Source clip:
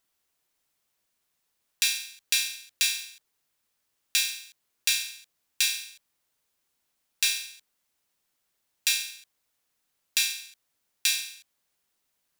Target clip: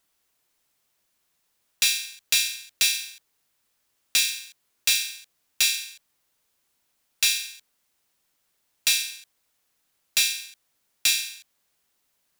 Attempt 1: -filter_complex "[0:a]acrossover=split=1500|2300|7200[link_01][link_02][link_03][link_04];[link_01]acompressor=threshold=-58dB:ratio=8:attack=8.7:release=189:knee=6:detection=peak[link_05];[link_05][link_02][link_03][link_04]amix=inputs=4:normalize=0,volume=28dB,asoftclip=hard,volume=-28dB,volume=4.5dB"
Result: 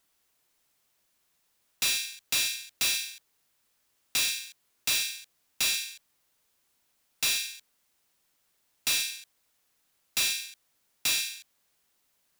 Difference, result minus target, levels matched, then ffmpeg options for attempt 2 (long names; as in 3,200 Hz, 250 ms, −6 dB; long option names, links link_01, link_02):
gain into a clipping stage and back: distortion +10 dB
-filter_complex "[0:a]acrossover=split=1500|2300|7200[link_01][link_02][link_03][link_04];[link_01]acompressor=threshold=-58dB:ratio=8:attack=8.7:release=189:knee=6:detection=peak[link_05];[link_05][link_02][link_03][link_04]amix=inputs=4:normalize=0,volume=18dB,asoftclip=hard,volume=-18dB,volume=4.5dB"